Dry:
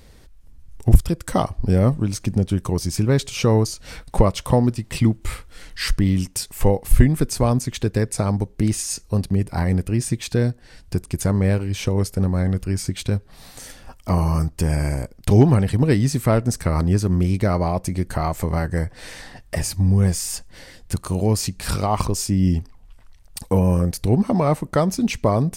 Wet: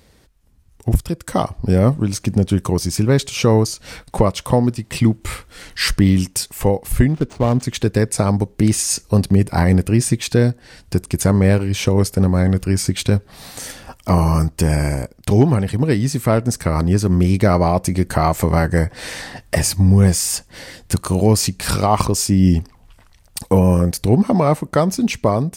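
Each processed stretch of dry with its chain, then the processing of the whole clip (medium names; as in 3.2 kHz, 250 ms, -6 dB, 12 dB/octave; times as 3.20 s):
7.08–7.63 s: median filter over 25 samples + treble shelf 10 kHz +8 dB + decimation joined by straight lines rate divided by 3×
whole clip: high-pass 86 Hz 6 dB/octave; level rider; trim -1 dB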